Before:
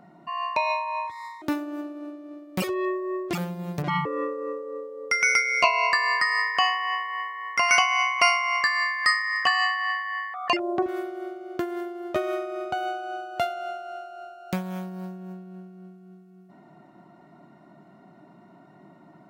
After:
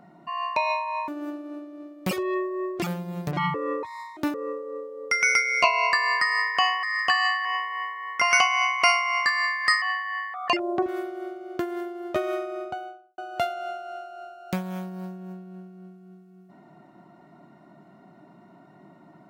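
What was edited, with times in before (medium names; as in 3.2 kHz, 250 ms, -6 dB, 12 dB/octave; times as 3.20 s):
1.08–1.59 s: move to 4.34 s
9.20–9.82 s: move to 6.83 s
12.43–13.18 s: studio fade out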